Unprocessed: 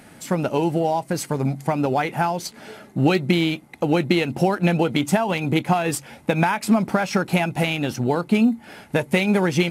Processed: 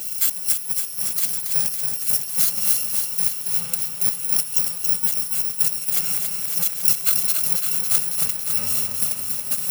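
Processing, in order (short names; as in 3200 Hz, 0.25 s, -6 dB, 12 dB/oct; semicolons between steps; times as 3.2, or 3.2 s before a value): FFT order left unsorted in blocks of 128 samples; limiter -15.5 dBFS, peak gain reduction 9.5 dB; high shelf 5500 Hz +8 dB; darkening echo 0.208 s, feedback 51%, low-pass 1300 Hz, level -9.5 dB; negative-ratio compressor -26 dBFS, ratio -0.5; tilt +2 dB/oct; lo-fi delay 0.278 s, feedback 80%, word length 6-bit, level -5 dB; gain -4 dB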